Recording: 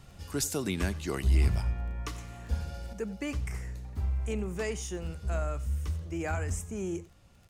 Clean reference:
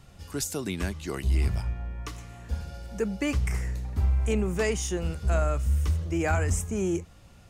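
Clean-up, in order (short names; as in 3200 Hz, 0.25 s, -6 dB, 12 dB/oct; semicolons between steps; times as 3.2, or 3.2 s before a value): de-click; inverse comb 90 ms -19.5 dB; gain correction +7 dB, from 2.93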